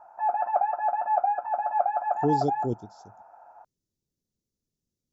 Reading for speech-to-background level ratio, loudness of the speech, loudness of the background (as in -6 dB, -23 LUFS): -3.0 dB, -30.0 LUFS, -27.0 LUFS